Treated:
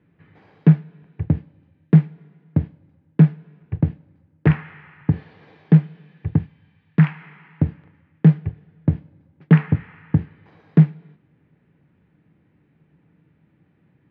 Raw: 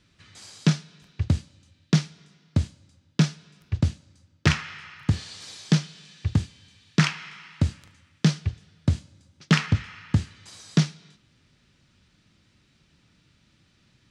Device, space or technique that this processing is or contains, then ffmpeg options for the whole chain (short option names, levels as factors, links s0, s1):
bass cabinet: -filter_complex "[0:a]asettb=1/sr,asplit=3[s0][s1][s2];[s0]atrim=end=6.384[s3];[s1]atrim=start=6.38:end=7.21,asetpts=PTS-STARTPTS,afade=t=in:d=0.004:c=qsin,afade=t=out:st=0.826:d=0.004:c=qsin,equalizer=f=380:w=1:g=-7.5[s4];[s2]atrim=start=7.206[s5];[s3][s4]acrossfade=d=0.004:c1=hsin:c2=qsin[s6];[s6][s5]acrossfade=d=0.004:c1=qsin:c2=hsin,highpass=75,equalizer=f=160:t=q:w=4:g=10,equalizer=f=300:t=q:w=4:g=7,equalizer=f=450:t=q:w=4:g=8,equalizer=f=800:t=q:w=4:g=5,equalizer=f=1300:t=q:w=4:g=-6,lowpass=f=2000:w=0.5412,lowpass=f=2000:w=1.3066"